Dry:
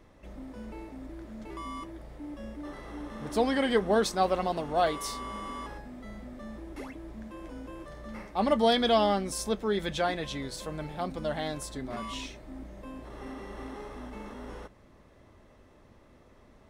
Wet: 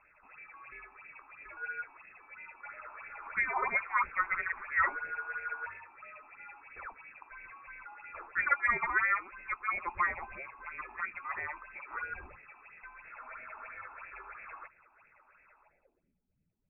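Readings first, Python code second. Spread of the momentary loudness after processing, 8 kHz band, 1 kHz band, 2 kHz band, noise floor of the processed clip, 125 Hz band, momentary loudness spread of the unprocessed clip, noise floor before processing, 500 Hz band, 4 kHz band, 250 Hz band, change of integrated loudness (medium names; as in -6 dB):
21 LU, under -35 dB, -3.5 dB, +8.0 dB, -73 dBFS, -19.0 dB, 19 LU, -58 dBFS, -21.5 dB, under -40 dB, -26.0 dB, -3.0 dB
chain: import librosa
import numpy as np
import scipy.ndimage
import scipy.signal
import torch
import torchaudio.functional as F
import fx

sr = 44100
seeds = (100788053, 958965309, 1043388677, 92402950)

y = fx.freq_invert(x, sr, carrier_hz=2600)
y = fx.phaser_stages(y, sr, stages=6, low_hz=130.0, high_hz=1100.0, hz=3.0, feedback_pct=30)
y = fx.filter_sweep_lowpass(y, sr, from_hz=1200.0, to_hz=180.0, start_s=15.59, end_s=16.18, q=3.5)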